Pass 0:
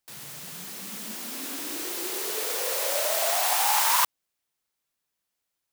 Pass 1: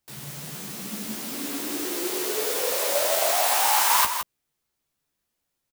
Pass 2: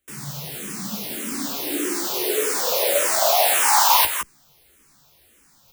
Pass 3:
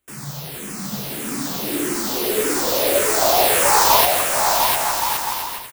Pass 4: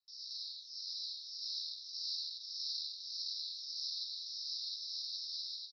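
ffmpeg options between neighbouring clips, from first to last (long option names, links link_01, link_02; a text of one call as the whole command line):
ffmpeg -i in.wav -filter_complex "[0:a]lowshelf=frequency=390:gain=9.5,asplit=2[link_01][link_02];[link_02]adelay=14,volume=-5dB[link_03];[link_01][link_03]amix=inputs=2:normalize=0,aecho=1:1:166:0.398" out.wav
ffmpeg -i in.wav -filter_complex "[0:a]areverse,acompressor=mode=upward:threshold=-43dB:ratio=2.5,areverse,asplit=2[link_01][link_02];[link_02]afreqshift=-1.7[link_03];[link_01][link_03]amix=inputs=2:normalize=1,volume=7dB" out.wav
ffmpeg -i in.wav -filter_complex "[0:a]asplit=2[link_01][link_02];[link_02]acrusher=samples=13:mix=1:aa=0.000001,volume=-11dB[link_03];[link_01][link_03]amix=inputs=2:normalize=0,aecho=1:1:700|1120|1372|1523|1614:0.631|0.398|0.251|0.158|0.1" out.wav
ffmpeg -i in.wav -af "acompressor=threshold=-22dB:ratio=6,asoftclip=type=tanh:threshold=-27.5dB,asuperpass=centerf=4600:order=12:qfactor=2.7,volume=1.5dB" out.wav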